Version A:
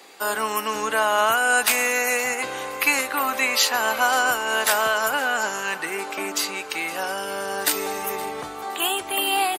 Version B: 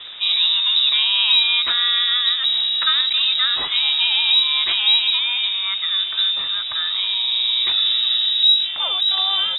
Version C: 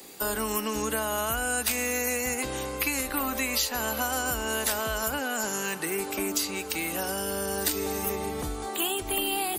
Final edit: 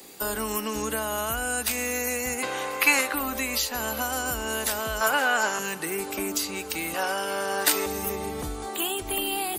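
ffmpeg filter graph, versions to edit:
-filter_complex "[0:a]asplit=3[s0][s1][s2];[2:a]asplit=4[s3][s4][s5][s6];[s3]atrim=end=2.432[s7];[s0]atrim=start=2.428:end=3.142[s8];[s4]atrim=start=3.138:end=5.012[s9];[s1]atrim=start=5.008:end=5.592[s10];[s5]atrim=start=5.588:end=6.942[s11];[s2]atrim=start=6.938:end=7.862[s12];[s6]atrim=start=7.858[s13];[s7][s8]acrossfade=d=0.004:c1=hsin:c2=hsin[s14];[s14][s9]acrossfade=d=0.004:c1=hsin:c2=hsin[s15];[s15][s10]acrossfade=d=0.004:c1=hsin:c2=hsin[s16];[s16][s11]acrossfade=d=0.004:c1=hsin:c2=hsin[s17];[s17][s12]acrossfade=d=0.004:c1=hsin:c2=hsin[s18];[s18][s13]acrossfade=d=0.004:c1=hsin:c2=hsin"

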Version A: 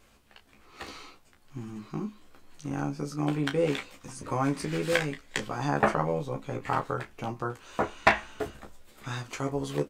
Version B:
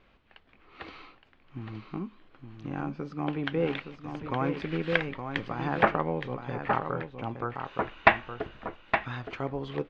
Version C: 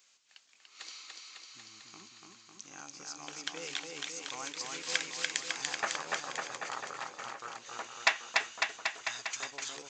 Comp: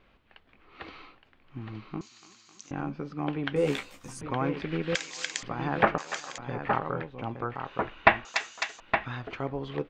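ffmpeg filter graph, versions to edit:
-filter_complex "[2:a]asplit=4[s0][s1][s2][s3];[1:a]asplit=6[s4][s5][s6][s7][s8][s9];[s4]atrim=end=2.012[s10];[s0]atrim=start=2.008:end=2.712[s11];[s5]atrim=start=2.708:end=3.562[s12];[0:a]atrim=start=3.558:end=4.212[s13];[s6]atrim=start=4.208:end=4.952[s14];[s1]atrim=start=4.948:end=5.432[s15];[s7]atrim=start=5.428:end=5.982[s16];[s2]atrim=start=5.978:end=6.382[s17];[s8]atrim=start=6.378:end=8.252[s18];[s3]atrim=start=8.248:end=8.802[s19];[s9]atrim=start=8.798[s20];[s10][s11]acrossfade=d=0.004:c1=hsin:c2=hsin[s21];[s21][s12]acrossfade=d=0.004:c1=hsin:c2=hsin[s22];[s22][s13]acrossfade=d=0.004:c1=hsin:c2=hsin[s23];[s23][s14]acrossfade=d=0.004:c1=hsin:c2=hsin[s24];[s24][s15]acrossfade=d=0.004:c1=hsin:c2=hsin[s25];[s25][s16]acrossfade=d=0.004:c1=hsin:c2=hsin[s26];[s26][s17]acrossfade=d=0.004:c1=hsin:c2=hsin[s27];[s27][s18]acrossfade=d=0.004:c1=hsin:c2=hsin[s28];[s28][s19]acrossfade=d=0.004:c1=hsin:c2=hsin[s29];[s29][s20]acrossfade=d=0.004:c1=hsin:c2=hsin"

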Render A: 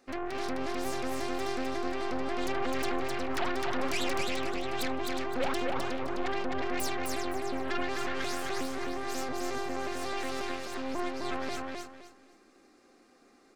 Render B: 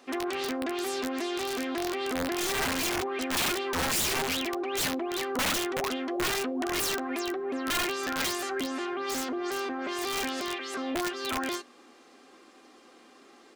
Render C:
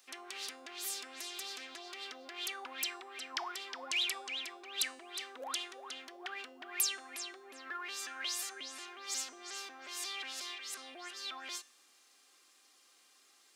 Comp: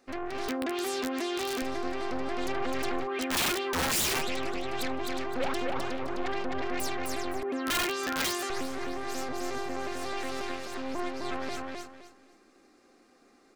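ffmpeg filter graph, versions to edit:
-filter_complex "[1:a]asplit=3[s0][s1][s2];[0:a]asplit=4[s3][s4][s5][s6];[s3]atrim=end=0.482[s7];[s0]atrim=start=0.478:end=1.622[s8];[s4]atrim=start=1.618:end=3.08[s9];[s1]atrim=start=3.02:end=4.24[s10];[s5]atrim=start=4.18:end=7.432[s11];[s2]atrim=start=7.428:end=8.502[s12];[s6]atrim=start=8.498[s13];[s7][s8]acrossfade=d=0.004:c1=hsin:c2=hsin[s14];[s14][s9]acrossfade=d=0.004:c1=hsin:c2=hsin[s15];[s15][s10]acrossfade=d=0.06:c1=tri:c2=tri[s16];[s16][s11]acrossfade=d=0.06:c1=tri:c2=tri[s17];[s17][s12]acrossfade=d=0.004:c1=hsin:c2=hsin[s18];[s18][s13]acrossfade=d=0.004:c1=hsin:c2=hsin"

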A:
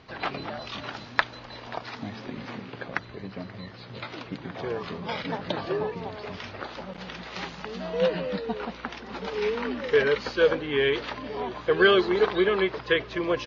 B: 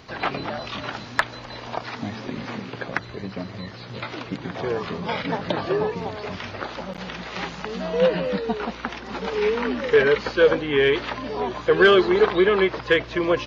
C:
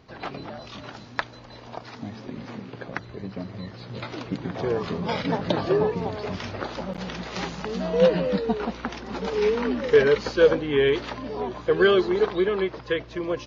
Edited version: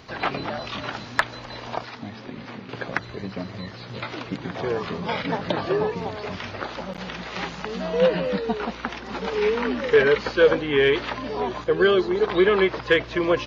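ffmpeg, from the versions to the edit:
-filter_complex "[1:a]asplit=3[s0][s1][s2];[s0]atrim=end=1.852[s3];[0:a]atrim=start=1.848:end=2.692[s4];[s1]atrim=start=2.688:end=11.642[s5];[2:a]atrim=start=11.638:end=12.292[s6];[s2]atrim=start=12.288[s7];[s3][s4]acrossfade=d=0.004:c1=hsin:c2=hsin[s8];[s8][s5]acrossfade=d=0.004:c1=hsin:c2=hsin[s9];[s9][s6]acrossfade=d=0.004:c1=hsin:c2=hsin[s10];[s10][s7]acrossfade=d=0.004:c1=hsin:c2=hsin"

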